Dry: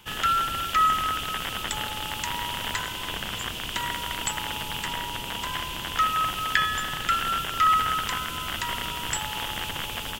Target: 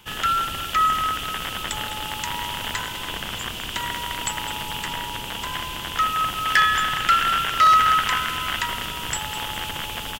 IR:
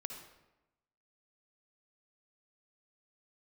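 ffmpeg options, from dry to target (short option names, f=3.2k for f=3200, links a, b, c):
-filter_complex "[0:a]asplit=3[a][b][c];[a]afade=t=out:st=6.45:d=0.02[d];[b]adynamicequalizer=threshold=0.0178:dfrequency=1800:dqfactor=0.73:tfrequency=1800:tqfactor=0.73:attack=5:release=100:ratio=0.375:range=3.5:mode=boostabove:tftype=bell,afade=t=in:st=6.45:d=0.02,afade=t=out:st=8.65:d=0.02[e];[c]afade=t=in:st=8.65:d=0.02[f];[d][e][f]amix=inputs=3:normalize=0,asoftclip=type=hard:threshold=-12.5dB,aecho=1:1:205|410|615|820:0.211|0.0888|0.0373|0.0157,volume=1.5dB"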